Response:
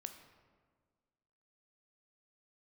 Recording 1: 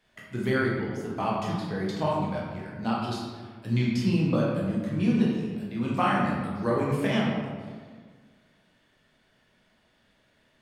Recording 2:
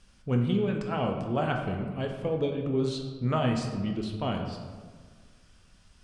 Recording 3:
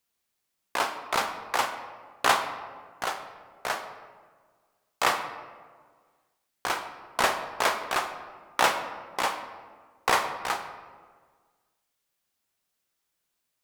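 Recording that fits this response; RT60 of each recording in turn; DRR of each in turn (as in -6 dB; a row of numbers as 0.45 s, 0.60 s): 3; 1.6 s, 1.6 s, 1.6 s; -5.0 dB, 2.5 dB, 6.5 dB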